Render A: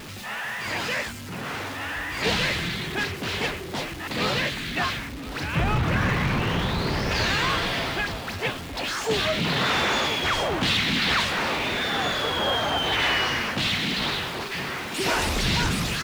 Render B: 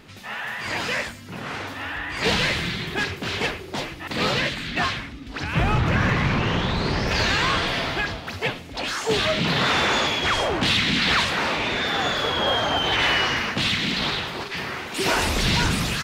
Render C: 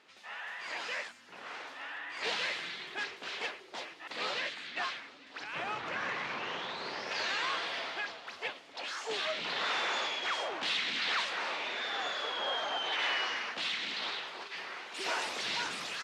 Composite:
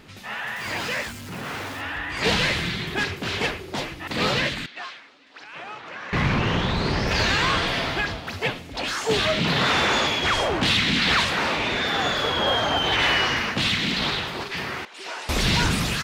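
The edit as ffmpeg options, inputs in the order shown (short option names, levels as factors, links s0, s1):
-filter_complex "[2:a]asplit=2[s0][s1];[1:a]asplit=4[s2][s3][s4][s5];[s2]atrim=end=0.562[s6];[0:a]atrim=start=0.558:end=1.812[s7];[s3]atrim=start=1.808:end=4.662[s8];[s0]atrim=start=4.658:end=6.132[s9];[s4]atrim=start=6.128:end=14.852[s10];[s1]atrim=start=14.848:end=15.292[s11];[s5]atrim=start=15.288[s12];[s6][s7]acrossfade=d=0.004:c1=hsin:c2=hsin[s13];[s13][s8]acrossfade=d=0.004:c1=hsin:c2=hsin[s14];[s14][s9]acrossfade=d=0.004:c1=hsin:c2=hsin[s15];[s15][s10]acrossfade=d=0.004:c1=hsin:c2=hsin[s16];[s16][s11]acrossfade=d=0.004:c1=hsin:c2=hsin[s17];[s17][s12]acrossfade=d=0.004:c1=hsin:c2=hsin"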